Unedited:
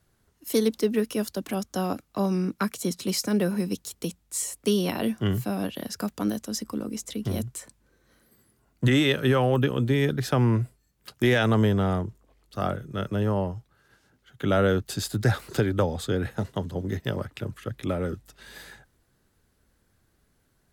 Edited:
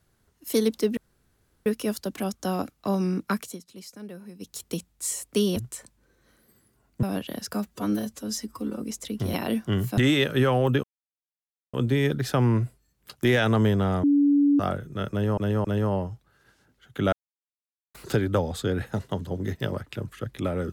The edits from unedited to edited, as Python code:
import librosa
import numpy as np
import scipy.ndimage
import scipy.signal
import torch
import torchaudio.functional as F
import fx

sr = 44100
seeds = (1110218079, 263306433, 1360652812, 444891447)

y = fx.edit(x, sr, fx.insert_room_tone(at_s=0.97, length_s=0.69),
    fx.fade_down_up(start_s=2.72, length_s=1.15, db=-16.5, fade_s=0.17),
    fx.swap(start_s=4.87, length_s=0.64, other_s=7.39, other_length_s=1.47),
    fx.stretch_span(start_s=6.02, length_s=0.85, factor=1.5),
    fx.insert_silence(at_s=9.72, length_s=0.9),
    fx.bleep(start_s=12.02, length_s=0.56, hz=286.0, db=-16.0),
    fx.repeat(start_s=13.09, length_s=0.27, count=3),
    fx.silence(start_s=14.57, length_s=0.82), tone=tone)